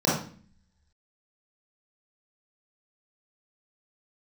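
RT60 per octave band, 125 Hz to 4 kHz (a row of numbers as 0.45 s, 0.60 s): 0.75 s, 0.80 s, 0.45 s, 0.40 s, 0.45 s, 0.40 s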